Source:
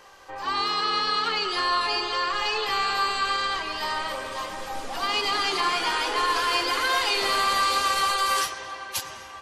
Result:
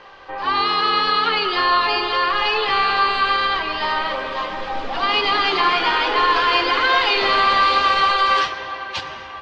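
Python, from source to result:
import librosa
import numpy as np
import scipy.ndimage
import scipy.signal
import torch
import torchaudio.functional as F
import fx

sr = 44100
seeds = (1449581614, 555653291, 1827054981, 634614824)

y = scipy.signal.sosfilt(scipy.signal.butter(4, 4000.0, 'lowpass', fs=sr, output='sos'), x)
y = fx.hum_notches(y, sr, base_hz=50, count=2)
y = F.gain(torch.from_numpy(y), 7.5).numpy()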